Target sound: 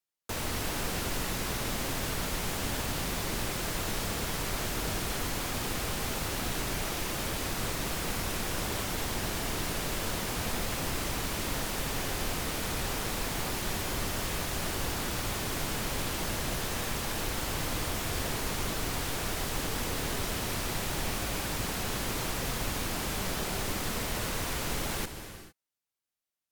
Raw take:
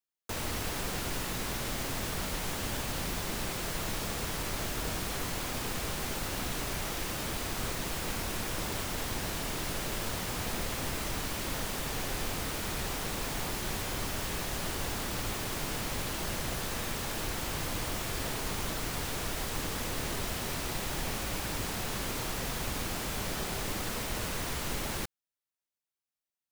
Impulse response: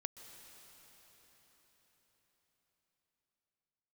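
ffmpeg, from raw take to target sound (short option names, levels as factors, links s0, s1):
-filter_complex "[1:a]atrim=start_sample=2205,afade=t=out:st=0.42:d=0.01,atrim=end_sample=18963,asetrate=35280,aresample=44100[s0];[0:a][s0]afir=irnorm=-1:irlink=0,volume=1.58"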